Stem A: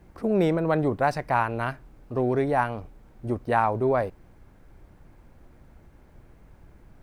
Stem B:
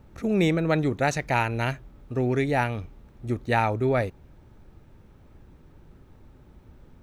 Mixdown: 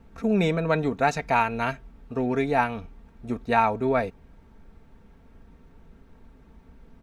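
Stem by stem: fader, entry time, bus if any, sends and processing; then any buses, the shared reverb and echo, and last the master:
-5.0 dB, 0.00 s, no send, Bessel high-pass 920 Hz
-1.5 dB, 0.4 ms, no send, dry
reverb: off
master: high shelf 7300 Hz -8.5 dB; comb 4.4 ms, depth 58%

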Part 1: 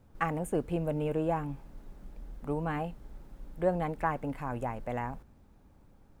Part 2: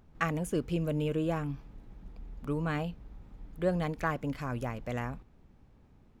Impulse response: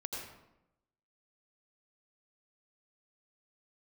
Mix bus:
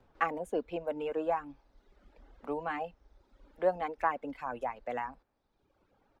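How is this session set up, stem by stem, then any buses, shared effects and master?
+1.5 dB, 0.00 s, no send, three-band isolator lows -23 dB, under 330 Hz, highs -24 dB, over 5200 Hz
-6.0 dB, 5 ms, no send, auto duck -9 dB, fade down 0.20 s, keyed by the first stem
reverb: off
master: reverb removal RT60 1.1 s

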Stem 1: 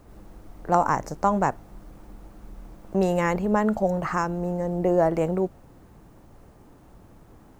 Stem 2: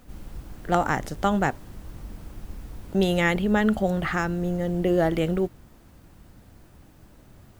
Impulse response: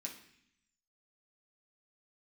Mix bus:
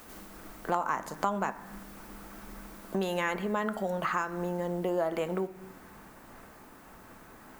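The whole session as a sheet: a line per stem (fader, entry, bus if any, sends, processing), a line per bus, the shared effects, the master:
-1.5 dB, 0.00 s, send -4 dB, bell 1600 Hz +12.5 dB 2 oct; noise-modulated level, depth 55%
+1.0 dB, 0.00 s, no send, HPF 180 Hz; tilt +3 dB/oct; auto duck -8 dB, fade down 0.30 s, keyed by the first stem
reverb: on, RT60 0.65 s, pre-delay 3 ms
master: compressor 3:1, threshold -30 dBFS, peak gain reduction 14 dB

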